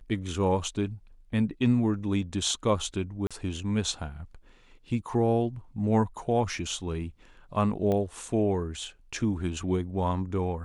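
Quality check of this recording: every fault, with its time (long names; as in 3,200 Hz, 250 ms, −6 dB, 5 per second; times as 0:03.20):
0:03.27–0:03.31: drop-out 36 ms
0:07.92: click −18 dBFS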